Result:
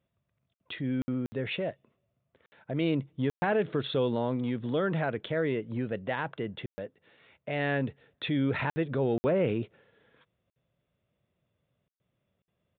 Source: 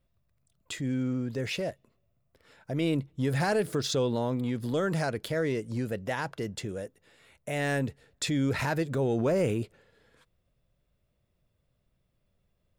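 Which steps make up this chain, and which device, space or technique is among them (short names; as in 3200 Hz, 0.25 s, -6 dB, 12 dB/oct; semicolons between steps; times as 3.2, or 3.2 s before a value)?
call with lost packets (HPF 110 Hz 12 dB/oct; downsampling 8000 Hz; packet loss packets of 60 ms random)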